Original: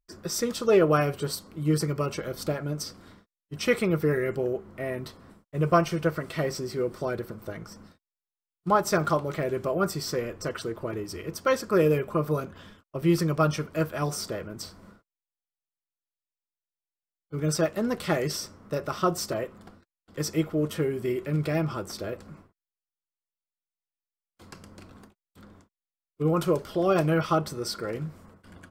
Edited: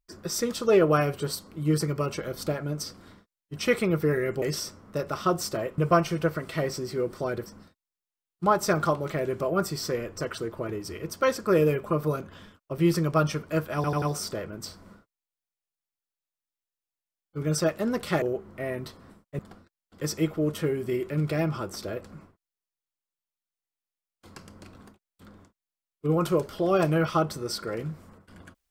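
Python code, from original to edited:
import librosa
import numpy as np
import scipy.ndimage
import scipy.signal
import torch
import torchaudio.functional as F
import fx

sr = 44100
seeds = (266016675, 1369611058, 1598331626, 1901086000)

y = fx.edit(x, sr, fx.swap(start_s=4.42, length_s=1.17, other_s=18.19, other_length_s=1.36),
    fx.cut(start_s=7.27, length_s=0.43),
    fx.stutter(start_s=13.99, slice_s=0.09, count=4), tone=tone)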